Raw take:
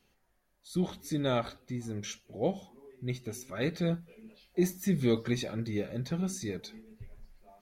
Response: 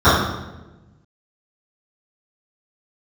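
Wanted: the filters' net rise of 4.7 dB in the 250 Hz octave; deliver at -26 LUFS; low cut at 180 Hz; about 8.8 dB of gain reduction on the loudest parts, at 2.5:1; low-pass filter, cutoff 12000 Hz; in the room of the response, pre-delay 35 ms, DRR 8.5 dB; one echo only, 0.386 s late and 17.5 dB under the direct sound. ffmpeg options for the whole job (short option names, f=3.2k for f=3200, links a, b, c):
-filter_complex "[0:a]highpass=180,lowpass=12k,equalizer=f=250:t=o:g=8.5,acompressor=threshold=-31dB:ratio=2.5,aecho=1:1:386:0.133,asplit=2[a][b];[1:a]atrim=start_sample=2205,adelay=35[c];[b][c]afir=irnorm=-1:irlink=0,volume=-37.5dB[d];[a][d]amix=inputs=2:normalize=0,volume=9dB"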